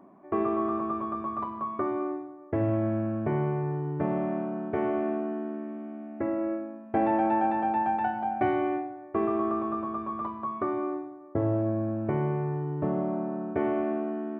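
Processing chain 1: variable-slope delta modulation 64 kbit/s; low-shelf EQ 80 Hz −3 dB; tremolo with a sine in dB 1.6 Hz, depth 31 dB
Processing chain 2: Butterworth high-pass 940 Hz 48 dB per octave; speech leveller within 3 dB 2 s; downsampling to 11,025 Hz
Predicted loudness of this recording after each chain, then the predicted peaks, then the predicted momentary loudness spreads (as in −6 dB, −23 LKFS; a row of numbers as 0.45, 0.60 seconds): −36.5, −39.0 LKFS; −16.5, −25.0 dBFS; 15, 13 LU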